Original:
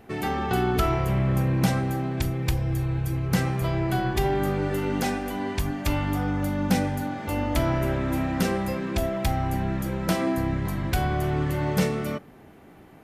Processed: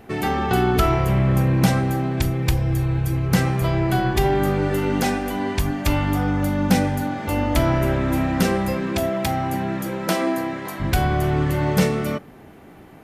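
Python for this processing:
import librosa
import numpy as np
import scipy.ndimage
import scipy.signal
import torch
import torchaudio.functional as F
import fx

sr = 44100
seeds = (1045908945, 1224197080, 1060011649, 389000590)

y = fx.highpass(x, sr, hz=fx.line((8.92, 100.0), (10.79, 400.0)), slope=12, at=(8.92, 10.79), fade=0.02)
y = F.gain(torch.from_numpy(y), 5.0).numpy()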